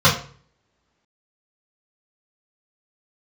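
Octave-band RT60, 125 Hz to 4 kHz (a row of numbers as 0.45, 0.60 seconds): 0.65, 0.50, 0.50, 0.45, 0.40, 0.35 seconds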